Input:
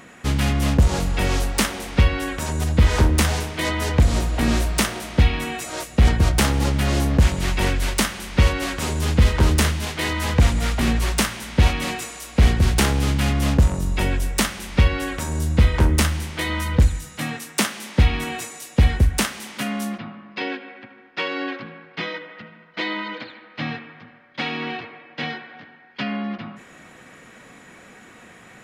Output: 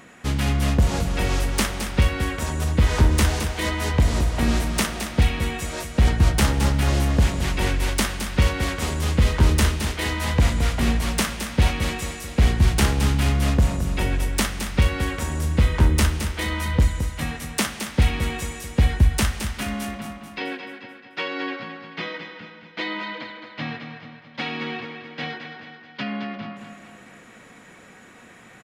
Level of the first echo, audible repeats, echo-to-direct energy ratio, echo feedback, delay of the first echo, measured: −8.5 dB, 5, −7.5 dB, 50%, 218 ms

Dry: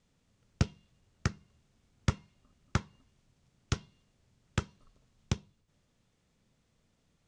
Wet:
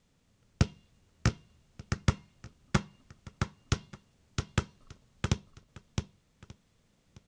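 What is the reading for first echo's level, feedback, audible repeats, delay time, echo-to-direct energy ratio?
−4.0 dB, repeats not evenly spaced, 3, 664 ms, −4.0 dB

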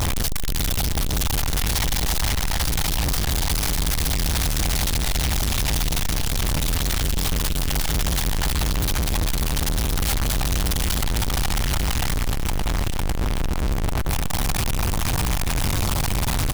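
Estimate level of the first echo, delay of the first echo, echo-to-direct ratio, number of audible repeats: −13.5 dB, 899 ms, −13.5 dB, 2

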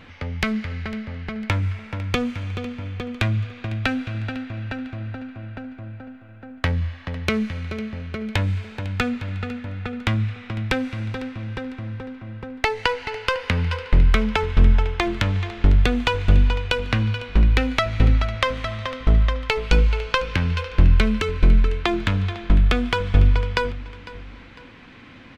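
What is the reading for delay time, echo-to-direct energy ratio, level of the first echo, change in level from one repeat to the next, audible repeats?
502 ms, −17.0 dB, −17.5 dB, −8.0 dB, 2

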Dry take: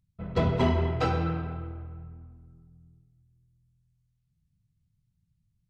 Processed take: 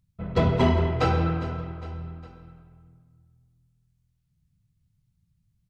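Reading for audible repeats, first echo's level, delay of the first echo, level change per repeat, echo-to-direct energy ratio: 3, −15.5 dB, 407 ms, −5.5 dB, −14.0 dB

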